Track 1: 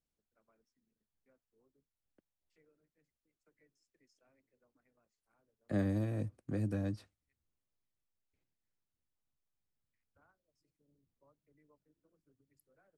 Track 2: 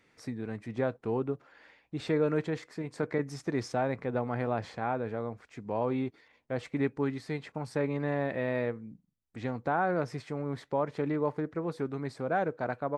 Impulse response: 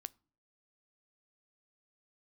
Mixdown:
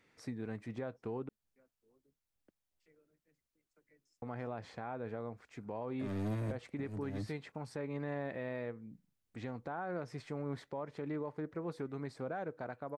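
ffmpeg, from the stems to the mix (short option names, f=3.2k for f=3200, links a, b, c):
-filter_complex "[0:a]volume=34.5dB,asoftclip=hard,volume=-34.5dB,adelay=300,volume=2dB[a];[1:a]acontrast=89,volume=-11.5dB,asplit=3[b][c][d];[b]atrim=end=1.29,asetpts=PTS-STARTPTS,afade=t=out:st=1.286:d=0.004:c=hsin[e];[c]atrim=start=1.29:end=4.22,asetpts=PTS-STARTPTS,volume=0[f];[d]atrim=start=4.22,asetpts=PTS-STARTPTS,afade=t=in:d=0.004:c=hsin[g];[e][f][g]concat=n=3:v=0:a=1,asplit=2[h][i];[i]apad=whole_len=585281[j];[a][j]sidechaincompress=threshold=-36dB:ratio=8:attack=16:release=167[k];[k][h]amix=inputs=2:normalize=0,alimiter=level_in=6.5dB:limit=-24dB:level=0:latency=1:release=252,volume=-6.5dB"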